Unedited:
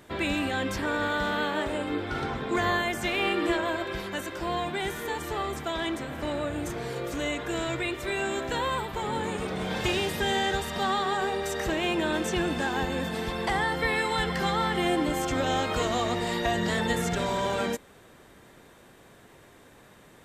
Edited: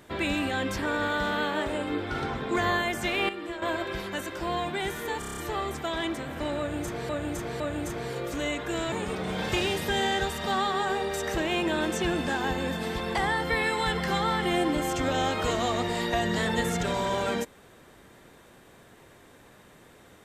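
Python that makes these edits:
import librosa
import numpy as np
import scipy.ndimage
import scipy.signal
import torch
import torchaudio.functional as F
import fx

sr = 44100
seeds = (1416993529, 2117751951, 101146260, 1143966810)

y = fx.edit(x, sr, fx.clip_gain(start_s=3.29, length_s=0.33, db=-10.0),
    fx.stutter(start_s=5.19, slice_s=0.03, count=7),
    fx.repeat(start_s=6.4, length_s=0.51, count=3),
    fx.cut(start_s=7.72, length_s=1.52), tone=tone)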